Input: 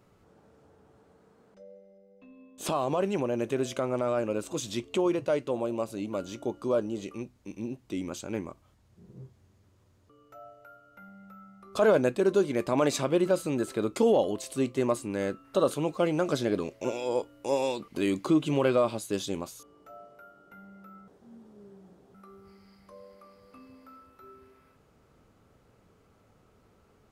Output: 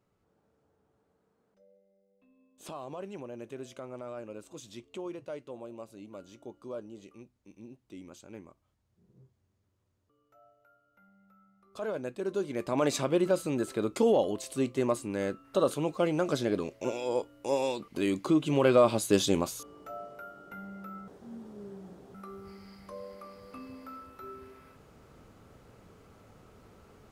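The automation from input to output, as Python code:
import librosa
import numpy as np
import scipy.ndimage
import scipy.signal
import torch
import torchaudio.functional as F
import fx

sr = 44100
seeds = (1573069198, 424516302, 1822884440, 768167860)

y = fx.gain(x, sr, db=fx.line((11.93, -13.0), (12.9, -1.5), (18.44, -1.5), (19.06, 6.5)))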